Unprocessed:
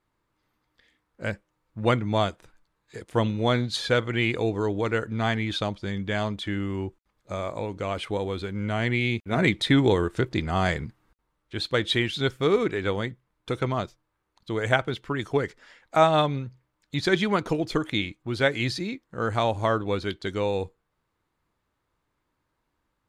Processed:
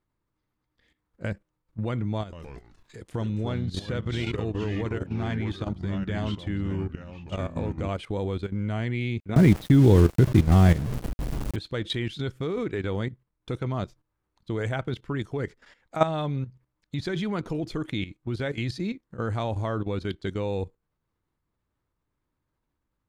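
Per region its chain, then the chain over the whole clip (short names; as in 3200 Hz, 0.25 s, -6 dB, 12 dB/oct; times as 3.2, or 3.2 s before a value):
2.21–7.89 compressor 8:1, threshold -26 dBFS + echoes that change speed 0.116 s, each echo -3 st, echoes 3, each echo -6 dB + mismatched tape noise reduction encoder only
9.36–11.56 delta modulation 64 kbps, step -29 dBFS + low shelf 370 Hz +10 dB + sample gate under -26 dBFS
whole clip: de-esser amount 50%; low shelf 330 Hz +9.5 dB; level quantiser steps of 13 dB; gain -2 dB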